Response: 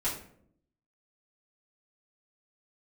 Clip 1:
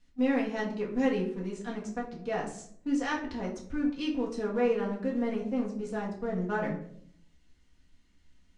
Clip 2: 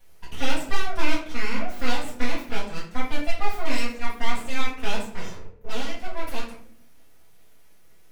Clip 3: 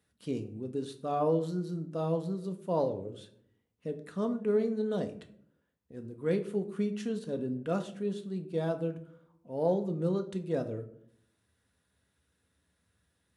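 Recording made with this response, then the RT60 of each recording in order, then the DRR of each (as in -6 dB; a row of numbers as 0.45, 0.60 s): 2; 0.65, 0.65, 0.65 s; -3.5, -10.0, 6.0 dB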